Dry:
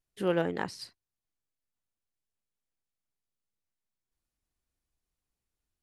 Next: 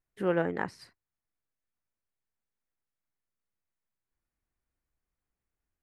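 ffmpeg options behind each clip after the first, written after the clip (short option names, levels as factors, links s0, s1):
-af "highshelf=f=2600:t=q:w=1.5:g=-8"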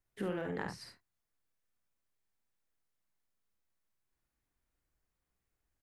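-filter_complex "[0:a]acompressor=threshold=0.0447:ratio=6,aecho=1:1:50|75:0.596|0.299,acrossover=split=150|3000[s0][s1][s2];[s1]acompressor=threshold=0.0112:ratio=3[s3];[s0][s3][s2]amix=inputs=3:normalize=0,volume=1.12"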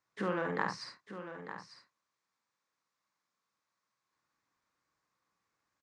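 -filter_complex "[0:a]highpass=210,equalizer=f=250:t=q:w=4:g=-5,equalizer=f=390:t=q:w=4:g=-7,equalizer=f=690:t=q:w=4:g=-5,equalizer=f=1100:t=q:w=4:g=9,equalizer=f=3000:t=q:w=4:g=-6,lowpass=f=6800:w=0.5412,lowpass=f=6800:w=1.3066,asplit=2[s0][s1];[s1]aecho=0:1:898:0.282[s2];[s0][s2]amix=inputs=2:normalize=0,volume=2.11"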